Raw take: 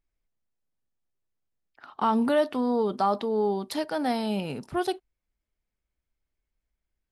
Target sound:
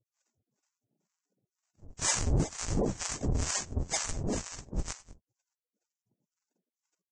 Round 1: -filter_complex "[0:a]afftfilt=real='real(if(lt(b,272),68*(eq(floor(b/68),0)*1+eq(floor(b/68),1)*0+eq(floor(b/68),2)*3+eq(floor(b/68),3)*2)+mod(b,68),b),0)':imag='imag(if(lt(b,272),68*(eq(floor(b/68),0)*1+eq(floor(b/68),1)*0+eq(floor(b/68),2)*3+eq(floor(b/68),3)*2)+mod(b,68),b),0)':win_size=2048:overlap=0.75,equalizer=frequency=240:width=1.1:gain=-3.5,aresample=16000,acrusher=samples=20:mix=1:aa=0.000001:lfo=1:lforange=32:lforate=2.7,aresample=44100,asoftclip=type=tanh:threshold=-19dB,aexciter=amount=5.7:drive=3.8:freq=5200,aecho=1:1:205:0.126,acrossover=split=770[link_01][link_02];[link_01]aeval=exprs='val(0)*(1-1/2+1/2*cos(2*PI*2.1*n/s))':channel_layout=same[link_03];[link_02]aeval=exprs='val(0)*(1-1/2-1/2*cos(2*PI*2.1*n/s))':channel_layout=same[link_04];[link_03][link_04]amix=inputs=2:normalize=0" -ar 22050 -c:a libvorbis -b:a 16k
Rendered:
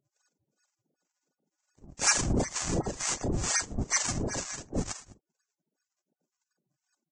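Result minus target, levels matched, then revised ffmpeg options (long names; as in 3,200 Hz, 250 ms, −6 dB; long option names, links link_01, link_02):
sample-and-hold swept by an LFO: distortion −5 dB
-filter_complex "[0:a]afftfilt=real='real(if(lt(b,272),68*(eq(floor(b/68),0)*1+eq(floor(b/68),1)*0+eq(floor(b/68),2)*3+eq(floor(b/68),3)*2)+mod(b,68),b),0)':imag='imag(if(lt(b,272),68*(eq(floor(b/68),0)*1+eq(floor(b/68),1)*0+eq(floor(b/68),2)*3+eq(floor(b/68),3)*2)+mod(b,68),b),0)':win_size=2048:overlap=0.75,equalizer=frequency=240:width=1.1:gain=-3.5,aresample=16000,acrusher=samples=54:mix=1:aa=0.000001:lfo=1:lforange=86.4:lforate=2.7,aresample=44100,asoftclip=type=tanh:threshold=-19dB,aexciter=amount=5.7:drive=3.8:freq=5200,aecho=1:1:205:0.126,acrossover=split=770[link_01][link_02];[link_01]aeval=exprs='val(0)*(1-1/2+1/2*cos(2*PI*2.1*n/s))':channel_layout=same[link_03];[link_02]aeval=exprs='val(0)*(1-1/2-1/2*cos(2*PI*2.1*n/s))':channel_layout=same[link_04];[link_03][link_04]amix=inputs=2:normalize=0" -ar 22050 -c:a libvorbis -b:a 16k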